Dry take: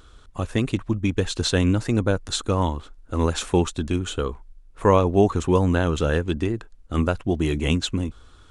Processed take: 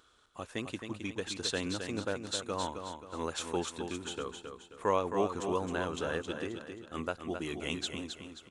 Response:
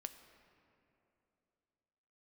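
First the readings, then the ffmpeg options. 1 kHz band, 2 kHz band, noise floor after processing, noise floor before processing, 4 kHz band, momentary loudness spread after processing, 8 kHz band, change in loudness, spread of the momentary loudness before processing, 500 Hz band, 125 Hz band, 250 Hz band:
−9.0 dB, −8.5 dB, −59 dBFS, −50 dBFS, −8.0 dB, 11 LU, −8.0 dB, −13.0 dB, 10 LU, −11.5 dB, −21.5 dB, −15.0 dB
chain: -filter_complex "[0:a]highpass=frequency=510:poles=1,asplit=2[link_01][link_02];[link_02]aecho=0:1:266|532|798|1064|1330:0.447|0.183|0.0751|0.0308|0.0126[link_03];[link_01][link_03]amix=inputs=2:normalize=0,volume=-9dB"

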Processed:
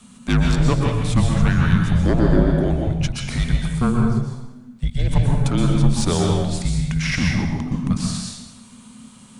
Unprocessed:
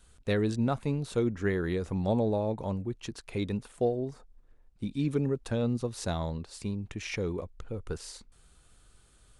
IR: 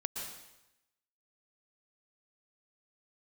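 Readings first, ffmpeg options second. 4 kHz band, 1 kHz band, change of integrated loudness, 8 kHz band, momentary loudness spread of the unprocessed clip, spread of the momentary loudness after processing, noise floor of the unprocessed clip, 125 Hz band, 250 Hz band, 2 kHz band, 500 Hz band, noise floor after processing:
+14.5 dB, +10.5 dB, +12.0 dB, +15.0 dB, 11 LU, 7 LU, −61 dBFS, +15.5 dB, +11.5 dB, +13.0 dB, +4.5 dB, −45 dBFS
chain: -filter_complex "[0:a]aeval=exprs='0.15*sin(PI/2*2*val(0)/0.15)':channel_layout=same,afreqshift=-260[link_01];[1:a]atrim=start_sample=2205,asetrate=42777,aresample=44100[link_02];[link_01][link_02]afir=irnorm=-1:irlink=0,volume=4dB"

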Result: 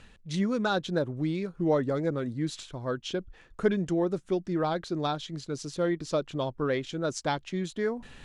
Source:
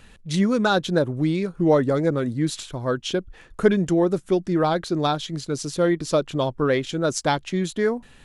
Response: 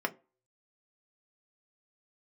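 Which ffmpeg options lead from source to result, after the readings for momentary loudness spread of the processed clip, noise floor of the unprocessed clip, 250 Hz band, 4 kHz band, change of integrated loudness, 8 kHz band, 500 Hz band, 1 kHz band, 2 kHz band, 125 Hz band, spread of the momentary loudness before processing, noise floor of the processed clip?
8 LU, −50 dBFS, −7.5 dB, −7.5 dB, −7.5 dB, −9.5 dB, −7.5 dB, −7.5 dB, −7.5 dB, −7.5 dB, 8 LU, −56 dBFS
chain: -af "areverse,acompressor=mode=upward:threshold=-30dB:ratio=2.5,areverse,lowpass=7600,volume=-7.5dB"

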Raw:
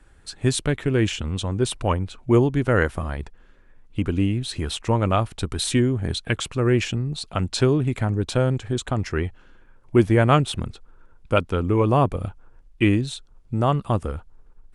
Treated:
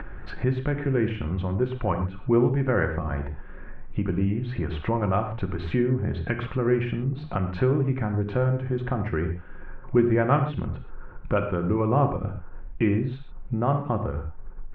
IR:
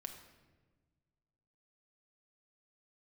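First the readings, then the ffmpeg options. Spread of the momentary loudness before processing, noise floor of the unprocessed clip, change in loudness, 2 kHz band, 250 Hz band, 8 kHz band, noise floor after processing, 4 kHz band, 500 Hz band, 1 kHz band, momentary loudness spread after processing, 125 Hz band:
12 LU, −51 dBFS, −3.5 dB, −4.0 dB, −2.5 dB, below −40 dB, −39 dBFS, −17.5 dB, −3.0 dB, −3.0 dB, 12 LU, −2.5 dB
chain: -filter_complex "[0:a]asplit=2[link_01][link_02];[link_02]acompressor=threshold=-27dB:ratio=6,volume=-2dB[link_03];[link_01][link_03]amix=inputs=2:normalize=0,lowpass=frequency=2100:width=0.5412,lowpass=frequency=2100:width=1.3066[link_04];[1:a]atrim=start_sample=2205,atrim=end_sample=6174[link_05];[link_04][link_05]afir=irnorm=-1:irlink=0,acompressor=mode=upward:threshold=-20dB:ratio=2.5,volume=-1.5dB"

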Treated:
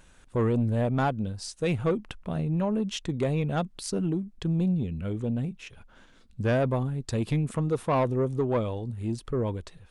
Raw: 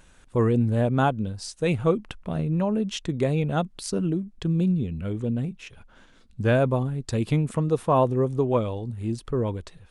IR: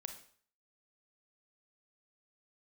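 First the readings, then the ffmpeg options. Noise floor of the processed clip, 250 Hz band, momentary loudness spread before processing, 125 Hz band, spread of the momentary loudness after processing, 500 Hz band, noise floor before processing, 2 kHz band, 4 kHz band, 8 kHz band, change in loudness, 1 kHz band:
−56 dBFS, −3.0 dB, 9 LU, −3.0 dB, 7 LU, −3.5 dB, −55 dBFS, −3.0 dB, −2.0 dB, −2.0 dB, −3.0 dB, −4.0 dB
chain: -af "asoftclip=type=tanh:threshold=-16.5dB,volume=-1.5dB"

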